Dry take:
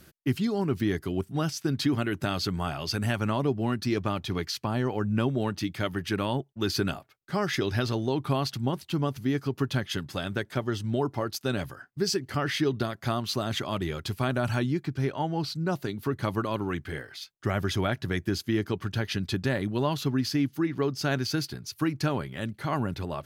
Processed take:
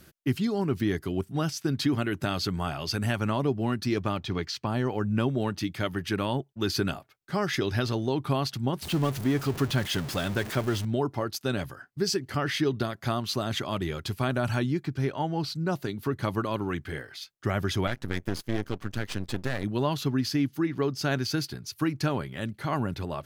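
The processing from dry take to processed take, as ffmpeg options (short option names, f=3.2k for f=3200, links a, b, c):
-filter_complex "[0:a]asettb=1/sr,asplit=3[a][b][c];[a]atrim=end=4.174[d];[b]atrim=start=4.17:end=4.66,asetpts=PTS-STARTPTS,afade=t=in:d=0.004:c=qsin,afade=t=out:st=0.486:d=0.004:c=qsin,equalizer=f=12k:t=o:w=0.73:g=-13.5[e];[c]atrim=start=4.656[f];[d][e]acrossfade=d=0.004:c1=hsin:c2=qsin[g];[g][f]acrossfade=d=0.004:c1=qsin:c2=hsin,asettb=1/sr,asplit=3[h][i][j];[h]atrim=end=8.824[k];[i]atrim=start=8.82:end=10.85,asetpts=PTS-STARTPTS,afade=t=in:d=0.004:c=qsin,afade=t=out:st=2.026:d=0.004:c=qsin,aeval=exprs='val(0)+0.5*0.0251*sgn(val(0))':c=same[l];[j]atrim=start=10.846[m];[k][l]acrossfade=d=0.004:c1=hsin:c2=qsin[n];[n][m]acrossfade=d=0.004:c1=qsin:c2=hsin,asettb=1/sr,asplit=3[o][p][q];[o]atrim=end=17.874[r];[p]atrim=start=17.87:end=19.64,asetpts=PTS-STARTPTS,afade=t=in:d=0.004:c=qsin,afade=t=out:st=1.766:d=0.004:c=qsin,aeval=exprs='max(val(0),0)':c=same[s];[q]atrim=start=19.636[t];[r][s]acrossfade=d=0.004:c1=hsin:c2=qsin[u];[u][t]acrossfade=d=0.004:c1=qsin:c2=hsin"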